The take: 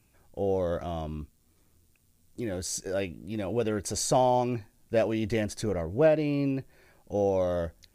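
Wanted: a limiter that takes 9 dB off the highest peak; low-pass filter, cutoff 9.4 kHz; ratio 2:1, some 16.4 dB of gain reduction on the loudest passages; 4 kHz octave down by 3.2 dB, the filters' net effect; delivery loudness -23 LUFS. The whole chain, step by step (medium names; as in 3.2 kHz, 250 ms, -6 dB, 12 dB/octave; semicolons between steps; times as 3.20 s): low-pass 9.4 kHz; peaking EQ 4 kHz -4 dB; compression 2:1, threshold -49 dBFS; trim +22.5 dB; peak limiter -14 dBFS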